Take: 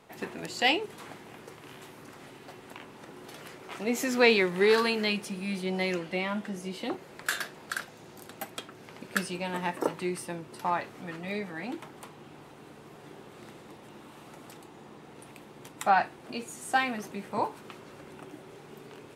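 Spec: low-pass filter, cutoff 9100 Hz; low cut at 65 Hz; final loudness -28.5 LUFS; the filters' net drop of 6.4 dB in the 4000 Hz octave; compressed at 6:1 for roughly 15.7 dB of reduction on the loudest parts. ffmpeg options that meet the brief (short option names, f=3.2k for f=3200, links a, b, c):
-af "highpass=65,lowpass=9.1k,equalizer=f=4k:t=o:g=-9,acompressor=threshold=-36dB:ratio=6,volume=14.5dB"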